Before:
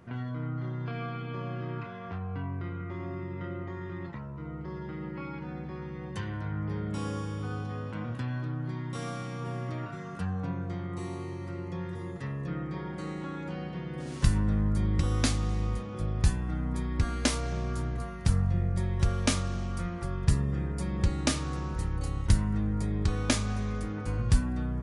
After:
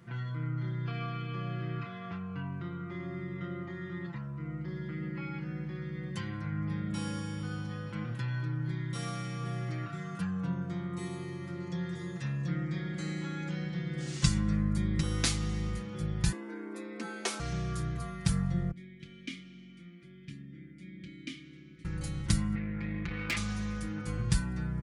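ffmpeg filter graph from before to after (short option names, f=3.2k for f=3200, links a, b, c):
-filter_complex "[0:a]asettb=1/sr,asplit=3[a][b][c];[a]atrim=end=11.604[d];[b]atrim=start=11.6:end=14.57,asetpts=PTS-STARTPTS,afade=t=in:d=0.004:c=qsin,afade=t=out:st=2.966:d=0.004:c=qsin,lowpass=f=7.8k:w=0.5412,lowpass=f=7.8k:w=1.3066,highshelf=f=4.8k:g=10[e];[c]atrim=start=14.566[f];[d][e]acrossfade=d=0.004:c1=hsin:c2=qsin[g];[g][f]acrossfade=d=0.004:c1=qsin:c2=hsin,asettb=1/sr,asplit=3[h][i][j];[h]atrim=end=16.324[k];[i]atrim=start=16.32:end=17.4,asetpts=PTS-STARTPTS,afade=t=in:d=0.004:c=qsin,afade=t=out:st=1.076:d=0.004:c=qsin,highpass=f=680:p=1,afreqshift=150,tiltshelf=f=1.2k:g=8[l];[j]atrim=start=17.396[m];[k][l]acrossfade=d=0.004:c1=hsin:c2=qsin[n];[n][m]acrossfade=d=0.004:c1=qsin:c2=hsin,asettb=1/sr,asplit=3[o][p][q];[o]atrim=end=18.714[r];[p]atrim=start=18.71:end=21.85,asetpts=PTS-STARTPTS,afade=t=in:d=0.004:c=qsin,afade=t=out:st=3.136:d=0.004:c=qsin,asplit=3[s][t][u];[s]bandpass=f=270:t=q:w=8,volume=0dB[v];[t]bandpass=f=2.29k:t=q:w=8,volume=-6dB[w];[u]bandpass=f=3.01k:t=q:w=8,volume=-9dB[x];[v][w][x]amix=inputs=3:normalize=0,asplit=2[y][z];[z]adelay=27,volume=-11dB[aa];[y][aa]amix=inputs=2:normalize=0,atrim=end_sample=138474[ab];[q]atrim=start=21.846[ac];[r][ab]acrossfade=d=0.004:c1=hsin:c2=qsin[ad];[ad][ac]acrossfade=d=0.004:c1=qsin:c2=hsin,asettb=1/sr,asplit=3[ae][af][ag];[ae]atrim=end=22.554[ah];[af]atrim=start=22.55:end=23.37,asetpts=PTS-STARTPTS,afade=t=in:d=0.004:c=qsin,afade=t=out:st=0.816:d=0.004:c=qsin,lowpass=f=3k:w=0.5412,lowpass=f=3k:w=1.3066,equalizer=f=2.2k:t=o:w=0.74:g=12.5,aeval=exprs='(tanh(20*val(0)+0.75)-tanh(0.75))/20':c=same[ai];[ag]atrim=start=23.366[aj];[ah][ai]acrossfade=d=0.004:c1=hsin:c2=qsin[ak];[ak][aj]acrossfade=d=0.004:c1=qsin:c2=hsin,highpass=67,equalizer=f=560:w=0.62:g=-9,aecho=1:1:5.9:0.82"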